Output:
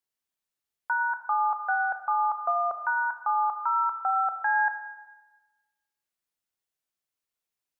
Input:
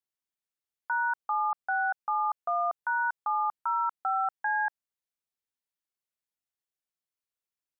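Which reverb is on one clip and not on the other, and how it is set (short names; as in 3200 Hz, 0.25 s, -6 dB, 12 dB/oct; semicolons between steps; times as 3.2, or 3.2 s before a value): Schroeder reverb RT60 1.2 s, combs from 25 ms, DRR 7 dB; gain +3 dB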